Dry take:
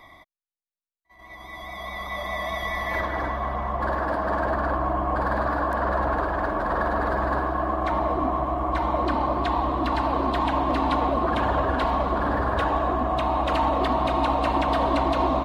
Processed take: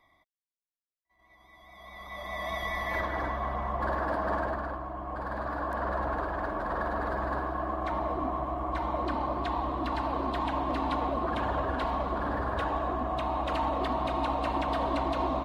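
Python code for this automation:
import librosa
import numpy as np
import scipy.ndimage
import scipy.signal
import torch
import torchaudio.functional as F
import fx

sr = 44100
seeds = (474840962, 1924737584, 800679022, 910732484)

y = fx.gain(x, sr, db=fx.line((1.63, -17.0), (2.51, -4.5), (4.34, -4.5), (4.88, -13.5), (5.78, -7.0)))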